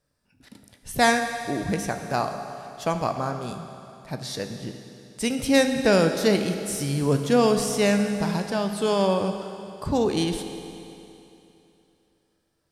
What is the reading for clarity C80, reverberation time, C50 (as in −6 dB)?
8.0 dB, 2.9 s, 7.0 dB